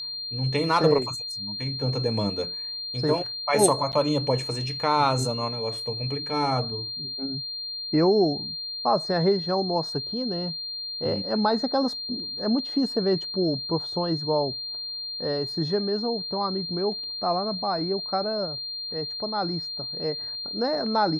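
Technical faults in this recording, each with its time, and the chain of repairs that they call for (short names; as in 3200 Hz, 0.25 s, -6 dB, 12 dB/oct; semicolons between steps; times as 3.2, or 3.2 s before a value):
tone 4200 Hz -31 dBFS
3.92–3.93 gap 8.8 ms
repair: notch 4200 Hz, Q 30; interpolate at 3.92, 8.8 ms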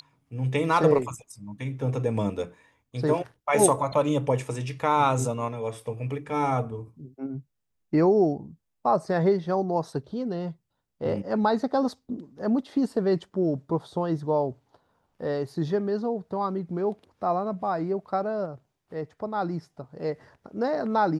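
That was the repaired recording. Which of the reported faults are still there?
none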